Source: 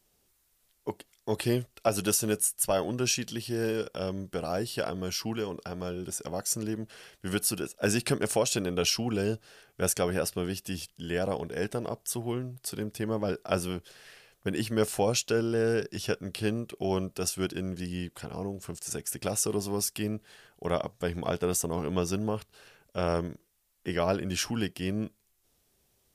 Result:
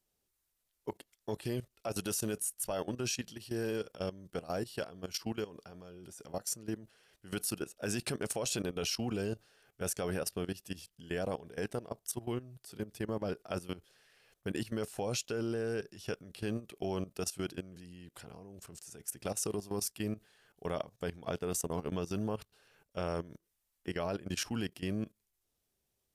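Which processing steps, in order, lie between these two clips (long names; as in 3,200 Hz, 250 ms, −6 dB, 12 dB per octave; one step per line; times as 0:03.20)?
output level in coarse steps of 16 dB
level −2.5 dB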